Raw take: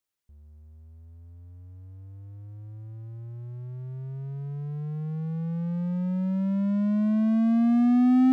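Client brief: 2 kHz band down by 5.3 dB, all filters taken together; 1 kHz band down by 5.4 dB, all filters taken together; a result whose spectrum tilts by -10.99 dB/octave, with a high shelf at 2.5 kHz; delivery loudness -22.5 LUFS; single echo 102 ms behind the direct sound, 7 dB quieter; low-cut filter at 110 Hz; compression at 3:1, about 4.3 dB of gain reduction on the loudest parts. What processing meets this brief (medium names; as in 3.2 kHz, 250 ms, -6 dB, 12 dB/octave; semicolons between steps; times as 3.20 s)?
high-pass 110 Hz; peaking EQ 1 kHz -8.5 dB; peaking EQ 2 kHz -5.5 dB; treble shelf 2.5 kHz +4 dB; compression 3:1, threshold -24 dBFS; delay 102 ms -7 dB; trim +5.5 dB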